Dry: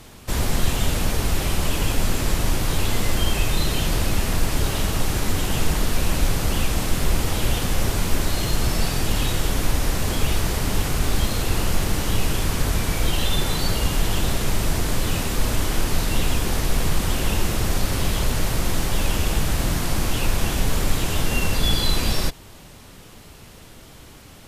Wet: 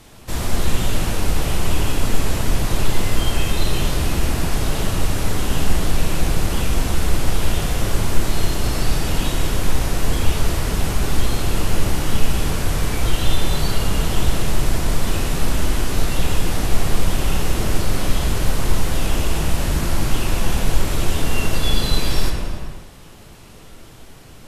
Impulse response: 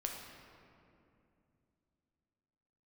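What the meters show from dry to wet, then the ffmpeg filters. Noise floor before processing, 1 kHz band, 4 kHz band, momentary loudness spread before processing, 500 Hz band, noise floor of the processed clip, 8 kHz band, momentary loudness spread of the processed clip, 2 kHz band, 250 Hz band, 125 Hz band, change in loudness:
−44 dBFS, +1.5 dB, −0.5 dB, 1 LU, +2.0 dB, −41 dBFS, −0.5 dB, 1 LU, +0.5 dB, +1.5 dB, +2.0 dB, +1.0 dB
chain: -filter_complex "[1:a]atrim=start_sample=2205,afade=type=out:start_time=0.38:duration=0.01,atrim=end_sample=17199,asetrate=26019,aresample=44100[link_01];[0:a][link_01]afir=irnorm=-1:irlink=0,volume=-2.5dB"

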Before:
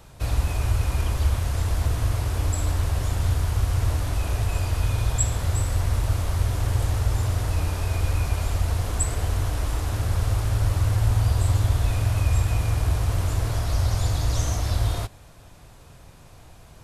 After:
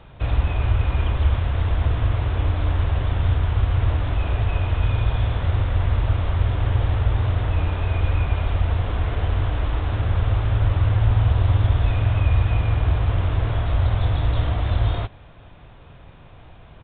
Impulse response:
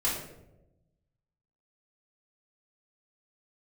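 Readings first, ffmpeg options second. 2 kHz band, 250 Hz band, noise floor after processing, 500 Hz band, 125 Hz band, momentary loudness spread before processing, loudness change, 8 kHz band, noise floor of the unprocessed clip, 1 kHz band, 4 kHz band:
+3.0 dB, +3.0 dB, −45 dBFS, +3.0 dB, +3.0 dB, 4 LU, +3.0 dB, below −40 dB, −48 dBFS, +3.0 dB, −0.5 dB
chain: -af "aresample=8000,aresample=44100,volume=3dB"

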